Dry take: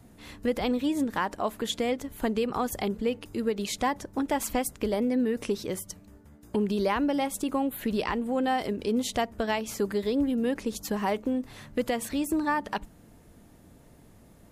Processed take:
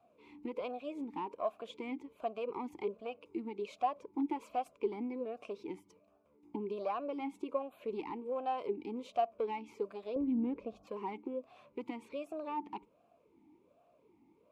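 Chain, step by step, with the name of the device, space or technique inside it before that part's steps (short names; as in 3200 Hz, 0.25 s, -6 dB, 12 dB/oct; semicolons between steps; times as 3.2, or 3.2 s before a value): talk box (tube stage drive 20 dB, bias 0.5; vowel sweep a-u 1.3 Hz); 10.16–10.87 RIAA curve playback; gain +3 dB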